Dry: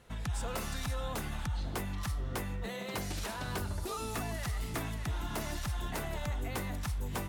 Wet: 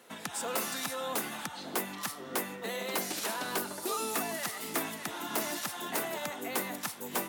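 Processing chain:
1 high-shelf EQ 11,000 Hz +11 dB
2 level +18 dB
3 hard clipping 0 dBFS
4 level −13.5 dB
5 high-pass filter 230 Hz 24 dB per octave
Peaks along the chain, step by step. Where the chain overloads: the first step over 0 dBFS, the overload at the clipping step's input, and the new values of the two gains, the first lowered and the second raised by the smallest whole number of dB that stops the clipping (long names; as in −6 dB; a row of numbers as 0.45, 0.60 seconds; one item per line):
−22.0, −4.0, −4.0, −17.5, −17.5 dBFS
no step passes full scale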